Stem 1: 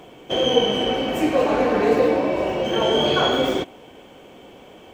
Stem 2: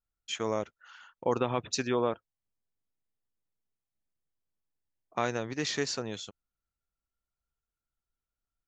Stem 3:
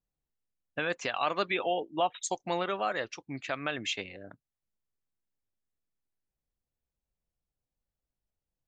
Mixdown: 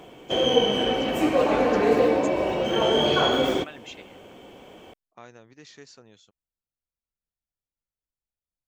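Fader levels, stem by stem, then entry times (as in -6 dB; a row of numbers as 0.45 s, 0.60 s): -2.0 dB, -16.0 dB, -9.0 dB; 0.00 s, 0.00 s, 0.00 s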